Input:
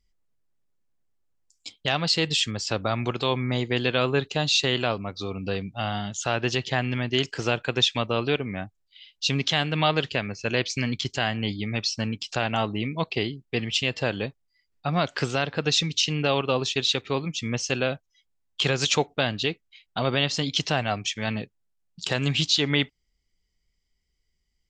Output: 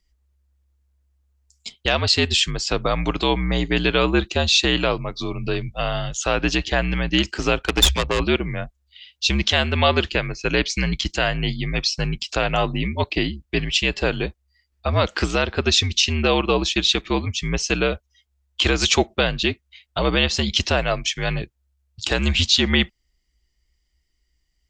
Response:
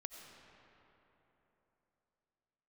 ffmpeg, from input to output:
-filter_complex "[0:a]asettb=1/sr,asplit=3[a][b][c];[a]atrim=end=7.594[d];[b]atrim=start=7.59:end=8.2,asetpts=PTS-STARTPTS,afade=t=in:d=0.004:c=qsin,afade=t=out:st=0.606:d=0.004:c=qsin,aeval=exprs='0.422*(cos(1*acos(clip(val(0)/0.422,-1,1)))-cos(1*PI/2))+0.0944*(cos(6*acos(clip(val(0)/0.422,-1,1)))-cos(6*PI/2))+0.0168*(cos(7*acos(clip(val(0)/0.422,-1,1)))-cos(7*PI/2))':c=same[e];[c]atrim=start=8.196[f];[d][e]acrossfade=d=0.004:c1=hsin:c2=qsin[g];[g][f]acrossfade=d=0.004:c1=qsin:c2=hsin,afreqshift=-68,volume=5dB"

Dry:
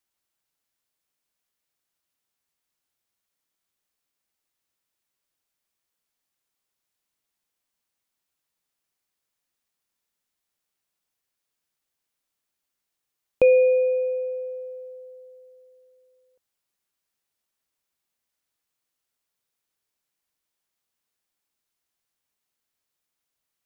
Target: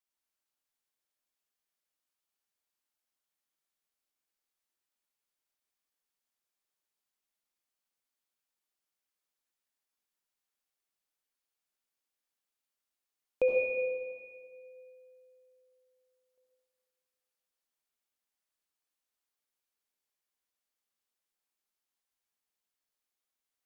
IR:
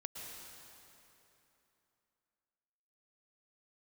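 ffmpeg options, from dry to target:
-filter_complex "[0:a]equalizer=f=110:w=1.1:g=-12[a];[1:a]atrim=start_sample=2205,asetrate=74970,aresample=44100[b];[a][b]afir=irnorm=-1:irlink=0"

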